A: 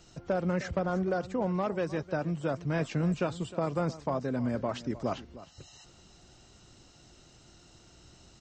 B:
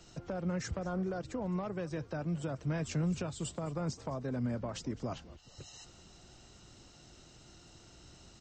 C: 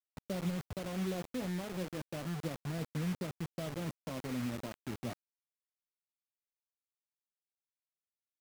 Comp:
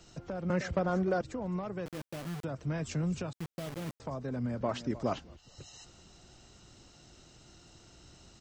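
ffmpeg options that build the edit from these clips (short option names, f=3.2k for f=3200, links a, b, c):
-filter_complex "[0:a]asplit=2[a][b];[2:a]asplit=2[c][d];[1:a]asplit=5[e][f][g][h][i];[e]atrim=end=0.502[j];[a]atrim=start=0.498:end=1.212[k];[f]atrim=start=1.208:end=1.862[l];[c]atrim=start=1.858:end=2.442[m];[g]atrim=start=2.438:end=3.332[n];[d]atrim=start=3.328:end=4.002[o];[h]atrim=start=3.998:end=4.612[p];[b]atrim=start=4.608:end=5.192[q];[i]atrim=start=5.188[r];[j][k]acrossfade=d=0.004:c1=hsin:c2=hsin[s];[s][l]acrossfade=d=0.004:c1=hsin:c2=hsin[t];[t][m]acrossfade=d=0.004:c1=hsin:c2=hsin[u];[u][n]acrossfade=d=0.004:c1=hsin:c2=hsin[v];[v][o]acrossfade=d=0.004:c1=hsin:c2=hsin[w];[w][p]acrossfade=d=0.004:c1=hsin:c2=hsin[x];[x][q]acrossfade=d=0.004:c1=hsin:c2=hsin[y];[y][r]acrossfade=d=0.004:c1=hsin:c2=hsin"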